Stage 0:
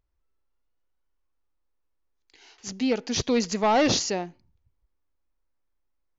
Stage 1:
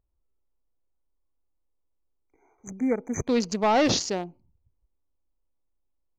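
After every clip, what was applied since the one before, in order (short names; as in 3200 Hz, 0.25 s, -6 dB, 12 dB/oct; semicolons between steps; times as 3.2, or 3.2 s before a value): Wiener smoothing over 25 samples; spectral delete 0.61–3.28, 2400–6000 Hz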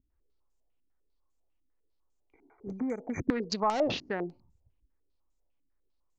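compressor 5:1, threshold -31 dBFS, peak gain reduction 11 dB; stepped low-pass 10 Hz 270–7100 Hz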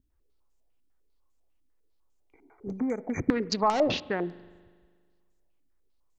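short-mantissa float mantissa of 8-bit; reverb RT60 1.7 s, pre-delay 40 ms, DRR 19.5 dB; gain +3.5 dB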